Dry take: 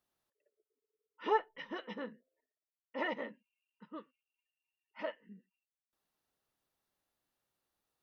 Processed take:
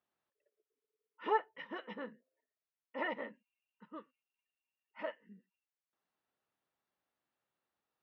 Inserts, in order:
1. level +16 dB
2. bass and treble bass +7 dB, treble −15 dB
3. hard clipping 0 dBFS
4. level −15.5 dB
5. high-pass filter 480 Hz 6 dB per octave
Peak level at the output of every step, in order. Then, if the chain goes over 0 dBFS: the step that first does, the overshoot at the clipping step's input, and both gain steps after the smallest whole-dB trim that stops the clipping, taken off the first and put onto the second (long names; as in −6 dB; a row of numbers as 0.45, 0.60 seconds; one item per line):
−3.5, −2.5, −2.5, −18.0, −20.0 dBFS
no step passes full scale